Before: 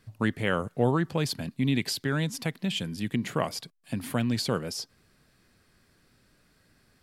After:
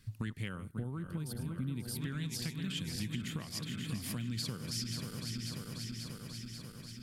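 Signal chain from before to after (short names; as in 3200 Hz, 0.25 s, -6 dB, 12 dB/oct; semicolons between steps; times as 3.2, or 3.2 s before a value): regenerating reverse delay 0.269 s, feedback 83%, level -10.5 dB; spectral gain 0.48–2.01, 1600–8100 Hz -11 dB; compressor 6:1, threshold -34 dBFS, peak gain reduction 15 dB; passive tone stack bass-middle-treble 6-0-2; gain +16.5 dB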